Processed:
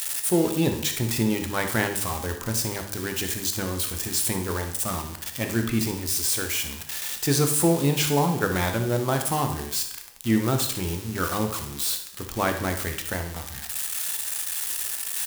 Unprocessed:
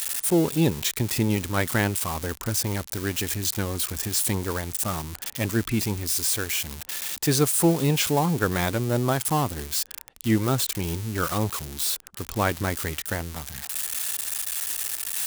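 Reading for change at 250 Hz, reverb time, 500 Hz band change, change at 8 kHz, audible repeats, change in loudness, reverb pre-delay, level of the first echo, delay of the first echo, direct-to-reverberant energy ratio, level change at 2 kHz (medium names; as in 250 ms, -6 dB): 0.0 dB, 0.75 s, +0.5 dB, 0.0 dB, 1, 0.0 dB, 5 ms, -12.0 dB, 60 ms, 4.5 dB, +0.5 dB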